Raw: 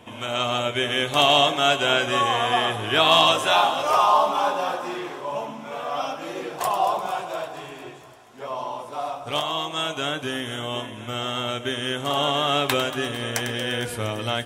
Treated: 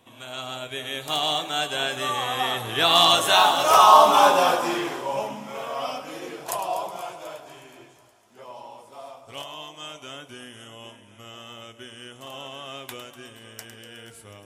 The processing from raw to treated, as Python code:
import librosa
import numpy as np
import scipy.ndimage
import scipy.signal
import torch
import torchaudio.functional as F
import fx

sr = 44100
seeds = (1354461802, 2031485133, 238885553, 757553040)

y = fx.doppler_pass(x, sr, speed_mps=18, closest_m=9.9, pass_at_s=4.28)
y = fx.high_shelf(y, sr, hz=5500.0, db=9.5)
y = F.gain(torch.from_numpy(y), 6.5).numpy()